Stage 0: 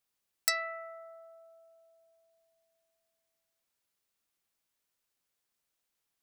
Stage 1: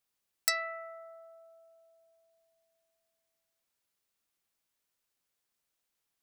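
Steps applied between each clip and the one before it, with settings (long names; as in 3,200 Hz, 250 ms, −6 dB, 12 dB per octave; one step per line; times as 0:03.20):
no processing that can be heard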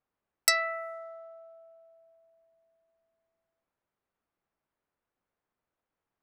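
low-pass that shuts in the quiet parts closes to 1,300 Hz, open at −39.5 dBFS
level +6 dB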